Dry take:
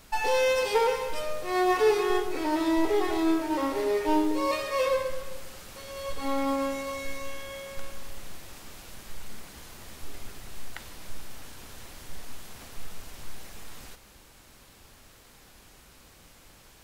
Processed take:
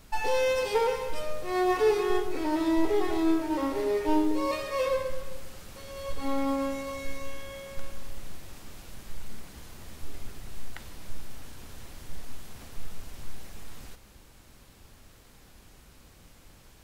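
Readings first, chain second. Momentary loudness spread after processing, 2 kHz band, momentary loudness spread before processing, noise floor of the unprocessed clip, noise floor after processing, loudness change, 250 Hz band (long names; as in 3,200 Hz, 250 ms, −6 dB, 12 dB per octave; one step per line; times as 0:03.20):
21 LU, −3.5 dB, 21 LU, −55 dBFS, −55 dBFS, −1.5 dB, 0.0 dB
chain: low-shelf EQ 320 Hz +7 dB
level −3.5 dB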